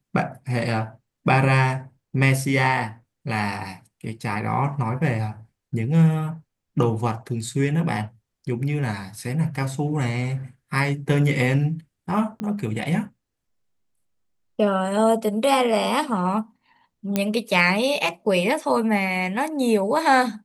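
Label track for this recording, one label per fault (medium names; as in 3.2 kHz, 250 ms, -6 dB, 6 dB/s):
12.400000	12.400000	pop -18 dBFS
17.160000	17.160000	pop -7 dBFS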